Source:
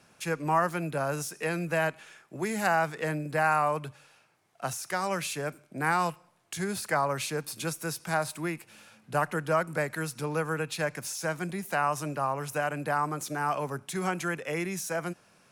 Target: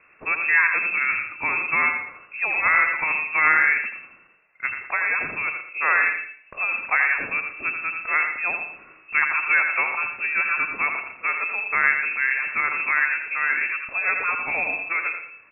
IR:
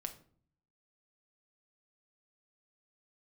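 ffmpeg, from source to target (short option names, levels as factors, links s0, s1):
-filter_complex "[0:a]aecho=1:1:83|166|249:0.447|0.116|0.0302,asplit=2[s0][s1];[1:a]atrim=start_sample=2205,asetrate=43659,aresample=44100,adelay=119[s2];[s1][s2]afir=irnorm=-1:irlink=0,volume=0.376[s3];[s0][s3]amix=inputs=2:normalize=0,lowpass=f=2400:t=q:w=0.5098,lowpass=f=2400:t=q:w=0.6013,lowpass=f=2400:t=q:w=0.9,lowpass=f=2400:t=q:w=2.563,afreqshift=-2800,volume=2"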